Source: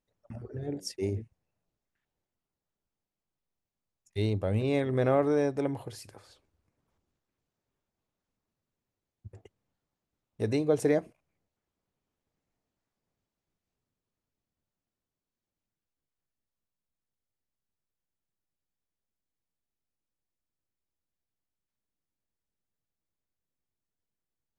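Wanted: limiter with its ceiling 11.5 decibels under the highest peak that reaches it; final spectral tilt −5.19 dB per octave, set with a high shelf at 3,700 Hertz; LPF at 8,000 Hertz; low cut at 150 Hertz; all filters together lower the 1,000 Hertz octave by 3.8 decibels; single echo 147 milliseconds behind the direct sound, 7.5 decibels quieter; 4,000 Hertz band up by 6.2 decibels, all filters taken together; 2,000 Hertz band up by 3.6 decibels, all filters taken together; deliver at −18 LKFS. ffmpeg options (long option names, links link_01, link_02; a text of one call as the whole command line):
ffmpeg -i in.wav -af "highpass=150,lowpass=8000,equalizer=frequency=1000:width_type=o:gain=-7.5,equalizer=frequency=2000:width_type=o:gain=4,highshelf=frequency=3700:gain=4.5,equalizer=frequency=4000:width_type=o:gain=4.5,alimiter=level_in=1.5dB:limit=-24dB:level=0:latency=1,volume=-1.5dB,aecho=1:1:147:0.422,volume=18.5dB" out.wav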